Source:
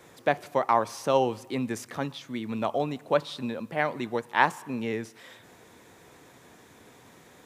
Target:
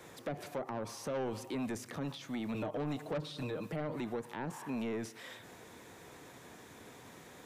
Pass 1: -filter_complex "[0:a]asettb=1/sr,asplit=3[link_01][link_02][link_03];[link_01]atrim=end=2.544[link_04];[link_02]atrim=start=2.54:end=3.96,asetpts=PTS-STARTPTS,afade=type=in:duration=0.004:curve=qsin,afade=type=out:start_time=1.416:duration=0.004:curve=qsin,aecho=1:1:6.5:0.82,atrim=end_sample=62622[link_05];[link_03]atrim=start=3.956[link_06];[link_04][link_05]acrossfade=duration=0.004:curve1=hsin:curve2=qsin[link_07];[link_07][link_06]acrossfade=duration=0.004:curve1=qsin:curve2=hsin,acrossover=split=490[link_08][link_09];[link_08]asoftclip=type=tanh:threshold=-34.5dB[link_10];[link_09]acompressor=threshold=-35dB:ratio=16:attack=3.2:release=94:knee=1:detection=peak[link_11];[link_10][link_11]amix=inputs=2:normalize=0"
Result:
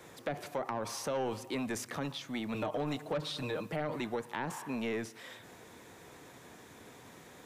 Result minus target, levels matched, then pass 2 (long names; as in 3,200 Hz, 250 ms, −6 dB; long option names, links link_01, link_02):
downward compressor: peak gain reduction −8 dB
-filter_complex "[0:a]asettb=1/sr,asplit=3[link_01][link_02][link_03];[link_01]atrim=end=2.544[link_04];[link_02]atrim=start=2.54:end=3.96,asetpts=PTS-STARTPTS,afade=type=in:duration=0.004:curve=qsin,afade=type=out:start_time=1.416:duration=0.004:curve=qsin,aecho=1:1:6.5:0.82,atrim=end_sample=62622[link_05];[link_03]atrim=start=3.956[link_06];[link_04][link_05]acrossfade=duration=0.004:curve1=hsin:curve2=qsin[link_07];[link_07][link_06]acrossfade=duration=0.004:curve1=qsin:curve2=hsin,acrossover=split=490[link_08][link_09];[link_08]asoftclip=type=tanh:threshold=-34.5dB[link_10];[link_09]acompressor=threshold=-43.5dB:ratio=16:attack=3.2:release=94:knee=1:detection=peak[link_11];[link_10][link_11]amix=inputs=2:normalize=0"